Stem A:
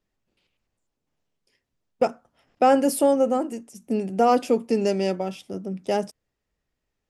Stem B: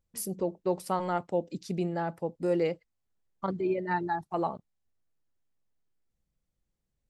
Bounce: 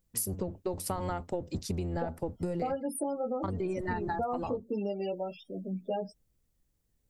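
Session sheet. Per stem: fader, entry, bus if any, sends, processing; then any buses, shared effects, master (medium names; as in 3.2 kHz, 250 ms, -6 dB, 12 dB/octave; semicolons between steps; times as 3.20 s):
-3.0 dB, 0.00 s, no send, chorus voices 2, 0.33 Hz, delay 18 ms, depth 2 ms; loudest bins only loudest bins 16
+2.5 dB, 0.00 s, no send, octave divider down 1 oct, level +2 dB; compression, threshold -27 dBFS, peak gain reduction 7 dB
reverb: none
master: treble shelf 7.2 kHz +10 dB; compression 10:1, threshold -29 dBFS, peak gain reduction 12 dB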